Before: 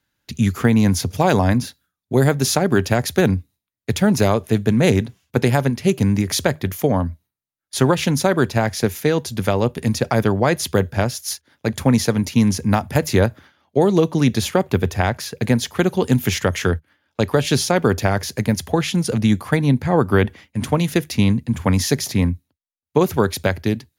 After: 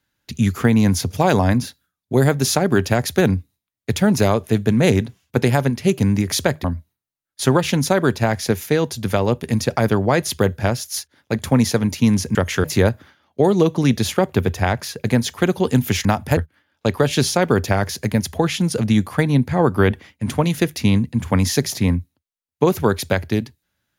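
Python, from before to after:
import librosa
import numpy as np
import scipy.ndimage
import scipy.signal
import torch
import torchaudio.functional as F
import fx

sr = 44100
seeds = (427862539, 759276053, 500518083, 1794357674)

y = fx.edit(x, sr, fx.cut(start_s=6.64, length_s=0.34),
    fx.swap(start_s=12.69, length_s=0.32, other_s=16.42, other_length_s=0.29), tone=tone)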